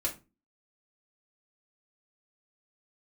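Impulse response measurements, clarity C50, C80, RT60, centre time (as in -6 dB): 13.0 dB, 20.0 dB, 0.30 s, 15 ms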